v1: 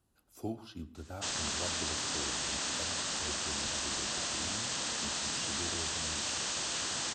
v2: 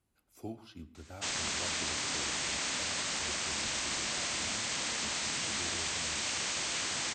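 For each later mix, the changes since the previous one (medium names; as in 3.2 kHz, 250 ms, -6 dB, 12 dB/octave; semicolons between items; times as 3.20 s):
speech -4.0 dB; master: add peaking EQ 2.2 kHz +8.5 dB 0.35 oct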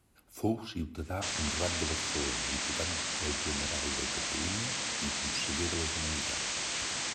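speech +11.5 dB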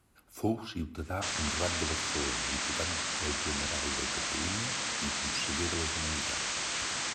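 master: add peaking EQ 1.3 kHz +4 dB 0.95 oct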